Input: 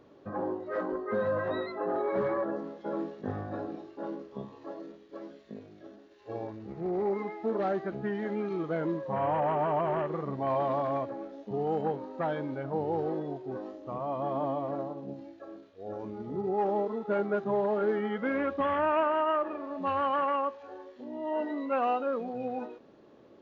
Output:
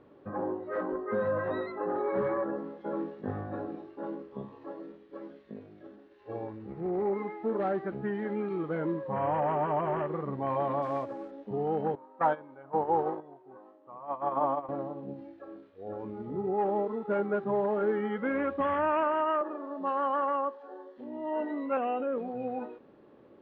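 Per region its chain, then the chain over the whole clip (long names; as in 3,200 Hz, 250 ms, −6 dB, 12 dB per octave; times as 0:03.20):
0:10.82–0:11.31: variable-slope delta modulation 64 kbit/s + bass and treble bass −3 dB, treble +3 dB
0:11.95–0:14.69: noise gate −32 dBFS, range −16 dB + high-pass filter 180 Hz 6 dB per octave + parametric band 1,000 Hz +11 dB 1.3 octaves
0:19.41–0:20.98: high-pass filter 230 Hz 24 dB per octave + parametric band 2,400 Hz −11.5 dB 0.54 octaves
0:21.77–0:22.18: Butterworth low-pass 3,400 Hz 48 dB per octave + parametric band 1,100 Hz −8.5 dB 1 octave + envelope flattener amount 50%
whole clip: low-pass filter 2,700 Hz 12 dB per octave; notch filter 660 Hz, Q 15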